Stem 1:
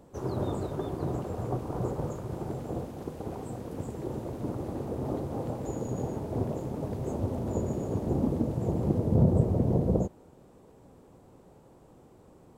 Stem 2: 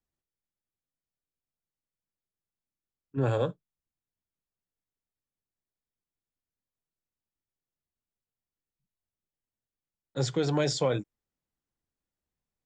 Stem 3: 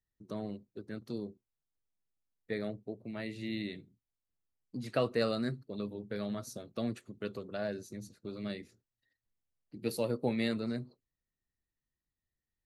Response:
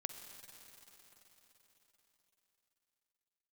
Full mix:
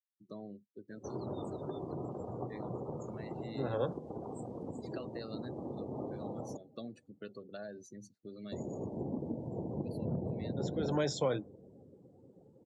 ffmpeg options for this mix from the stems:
-filter_complex "[0:a]volume=15.5dB,asoftclip=hard,volume=-15.5dB,adelay=900,volume=-3.5dB,asplit=3[link_01][link_02][link_03];[link_01]atrim=end=6.57,asetpts=PTS-STARTPTS,afade=type=out:start_time=6.566:duration=0.004:curve=hsin[link_04];[link_02]atrim=start=6.57:end=8.52,asetpts=PTS-STARTPTS,volume=0[link_05];[link_03]atrim=start=8.52,asetpts=PTS-STARTPTS,afade=type=in:duration=0.004:curve=hsin[link_06];[link_04][link_05][link_06]concat=n=3:v=0:a=1,asplit=2[link_07][link_08];[link_08]volume=-9.5dB[link_09];[1:a]bandreject=frequency=4600:width=5.8,adelay=400,volume=-4.5dB[link_10];[2:a]volume=-5dB,asplit=2[link_11][link_12];[link_12]apad=whole_len=575621[link_13];[link_10][link_13]sidechaincompress=threshold=-43dB:ratio=10:attack=32:release=263[link_14];[link_07][link_11]amix=inputs=2:normalize=0,highshelf=frequency=3200:gain=10,acompressor=threshold=-40dB:ratio=6,volume=0dB[link_15];[3:a]atrim=start_sample=2205[link_16];[link_09][link_16]afir=irnorm=-1:irlink=0[link_17];[link_14][link_15][link_17]amix=inputs=3:normalize=0,afftdn=noise_reduction=23:noise_floor=-50,highpass=130,lowpass=7300,equalizer=frequency=2500:width_type=o:width=0.35:gain=-4.5"

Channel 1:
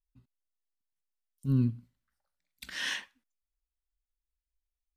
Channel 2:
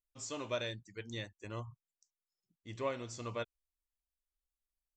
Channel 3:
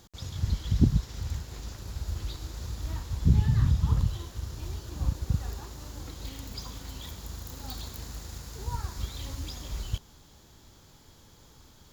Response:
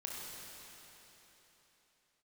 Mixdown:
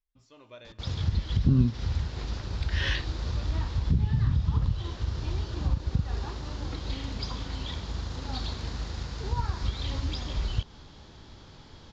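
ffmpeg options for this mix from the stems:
-filter_complex "[0:a]volume=-1.5dB[link_01];[1:a]volume=-16.5dB,asplit=2[link_02][link_03];[link_03]volume=-10dB[link_04];[2:a]acompressor=threshold=-30dB:ratio=3,adelay=650,volume=2.5dB[link_05];[3:a]atrim=start_sample=2205[link_06];[link_04][link_06]afir=irnorm=-1:irlink=0[link_07];[link_01][link_02][link_05][link_07]amix=inputs=4:normalize=0,lowpass=frequency=4900:width=0.5412,lowpass=frequency=4900:width=1.3066,dynaudnorm=framelen=230:gausssize=3:maxgain=4dB"

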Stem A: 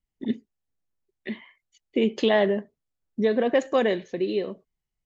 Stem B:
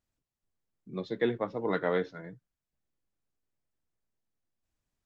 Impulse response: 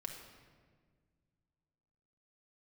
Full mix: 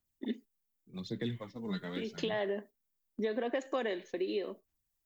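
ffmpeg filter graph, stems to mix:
-filter_complex "[0:a]highpass=frequency=250:width=0.5412,highpass=frequency=250:width=1.3066,volume=-3.5dB[link_01];[1:a]aemphasis=mode=production:type=50fm,acrossover=split=240|3000[link_02][link_03][link_04];[link_03]acompressor=threshold=-49dB:ratio=3[link_05];[link_02][link_05][link_04]amix=inputs=3:normalize=0,aphaser=in_gain=1:out_gain=1:delay=5:decay=0.56:speed=0.85:type=sinusoidal,volume=-1dB,asplit=2[link_06][link_07];[link_07]apad=whole_len=222847[link_08];[link_01][link_08]sidechaincompress=threshold=-47dB:ratio=8:attack=40:release=315[link_09];[link_09][link_06]amix=inputs=2:normalize=0,agate=range=-7dB:threshold=-46dB:ratio=16:detection=peak,equalizer=frequency=490:width=1.5:gain=-3,acompressor=threshold=-30dB:ratio=6"

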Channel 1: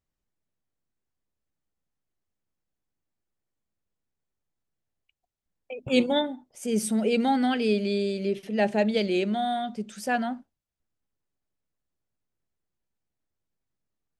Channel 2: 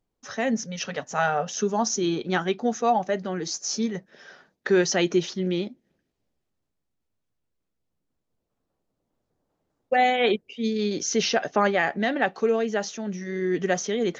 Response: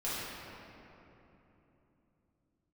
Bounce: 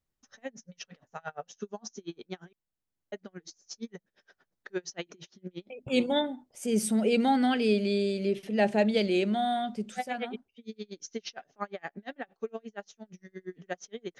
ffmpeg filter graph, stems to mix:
-filter_complex "[0:a]volume=-1dB[link_01];[1:a]aeval=exprs='val(0)*pow(10,-37*(0.5-0.5*cos(2*PI*8.6*n/s))/20)':channel_layout=same,volume=-9.5dB,asplit=3[link_02][link_03][link_04];[link_02]atrim=end=2.53,asetpts=PTS-STARTPTS,afade=type=out:start_time=2.526:duration=0.004:curve=hsin[link_05];[link_03]atrim=start=2.53:end=3.12,asetpts=PTS-STARTPTS,volume=0[link_06];[link_04]atrim=start=3.12,asetpts=PTS-STARTPTS,afade=type=in:duration=0.004:curve=hsin[link_07];[link_05][link_06][link_07]concat=n=3:v=0:a=1,asplit=2[link_08][link_09];[link_09]apad=whole_len=626210[link_10];[link_01][link_10]sidechaincompress=threshold=-39dB:ratio=4:attack=5.4:release=1270[link_11];[link_11][link_08]amix=inputs=2:normalize=0"

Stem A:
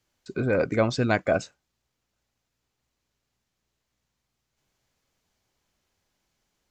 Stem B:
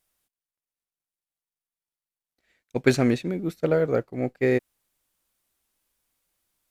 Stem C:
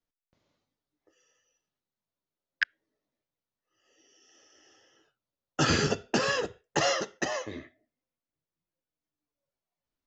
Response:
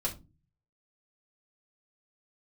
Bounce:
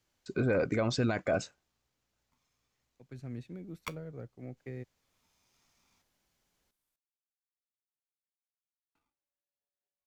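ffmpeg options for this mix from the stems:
-filter_complex "[0:a]volume=-2.5dB[link_01];[1:a]acrossover=split=170[link_02][link_03];[link_03]acompressor=threshold=-35dB:ratio=6[link_04];[link_02][link_04]amix=inputs=2:normalize=0,adelay=250,volume=-10.5dB,afade=type=in:start_time=3.05:duration=0.34:silence=0.223872[link_05];[2:a]flanger=delay=5.2:depth=5.1:regen=79:speed=0.33:shape=sinusoidal,aeval=exprs='val(0)*sgn(sin(2*PI*570*n/s))':channel_layout=same,adelay=1250,volume=-8.5dB,asplit=3[link_06][link_07][link_08];[link_06]atrim=end=6.02,asetpts=PTS-STARTPTS,afade=type=out:start_time=6.016:duration=0.004:curve=hsin[link_09];[link_07]atrim=start=6.02:end=8.95,asetpts=PTS-STARTPTS,volume=0[link_10];[link_08]atrim=start=8.95,asetpts=PTS-STARTPTS,afade=type=in:duration=0.004:curve=hsin[link_11];[link_09][link_10][link_11]concat=n=3:v=0:a=1[link_12];[link_01][link_05][link_12]amix=inputs=3:normalize=0,alimiter=limit=-20.5dB:level=0:latency=1:release=19"

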